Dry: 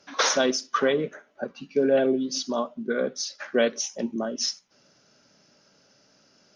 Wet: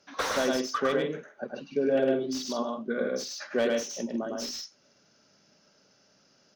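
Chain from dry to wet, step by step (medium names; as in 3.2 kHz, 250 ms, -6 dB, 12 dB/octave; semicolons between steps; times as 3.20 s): loudspeakers at several distances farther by 36 m -3 dB, 52 m -9 dB; slew-rate limiter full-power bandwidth 160 Hz; trim -5 dB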